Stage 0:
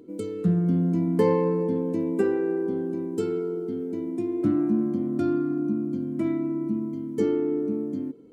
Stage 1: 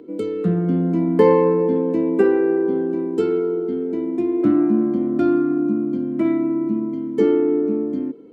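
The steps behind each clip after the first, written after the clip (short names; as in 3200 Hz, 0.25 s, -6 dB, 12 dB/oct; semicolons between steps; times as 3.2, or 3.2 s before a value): three-band isolator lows -12 dB, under 220 Hz, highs -14 dB, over 3900 Hz; gain +8.5 dB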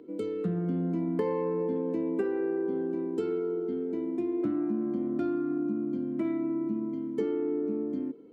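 compressor, threshold -18 dBFS, peak gain reduction 9 dB; gain -8 dB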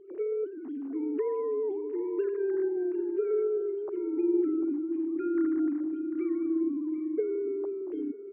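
sine-wave speech; tapped delay 0.745/0.798 s -13.5/-18.5 dB; on a send at -23 dB: reverb RT60 5.0 s, pre-delay 23 ms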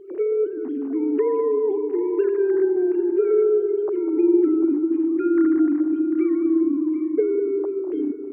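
analogue delay 0.2 s, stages 2048, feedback 55%, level -12 dB; gain +9 dB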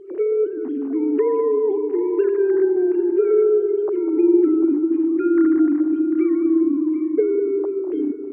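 gain +2 dB; AAC 96 kbps 22050 Hz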